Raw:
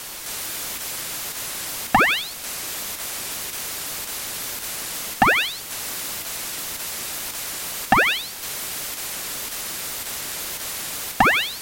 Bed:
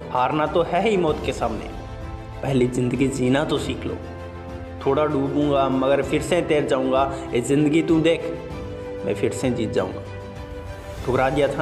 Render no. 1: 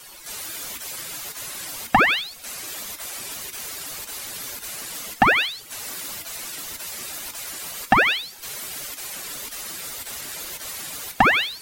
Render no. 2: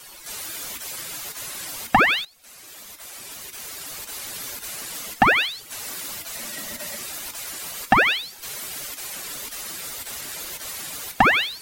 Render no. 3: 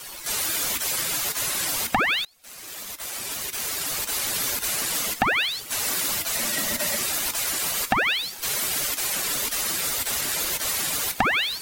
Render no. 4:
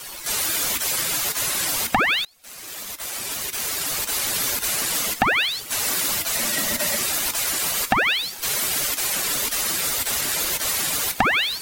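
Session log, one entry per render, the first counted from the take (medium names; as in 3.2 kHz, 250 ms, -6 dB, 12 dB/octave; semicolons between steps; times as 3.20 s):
noise reduction 13 dB, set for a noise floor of -35 dBFS
2.25–4.28 s: fade in, from -16.5 dB; 6.34–6.95 s: small resonant body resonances 220/590/1900 Hz, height 9 dB -> 14 dB
compression 12:1, threshold -25 dBFS, peak gain reduction 15 dB; waveshaping leveller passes 2
trim +2.5 dB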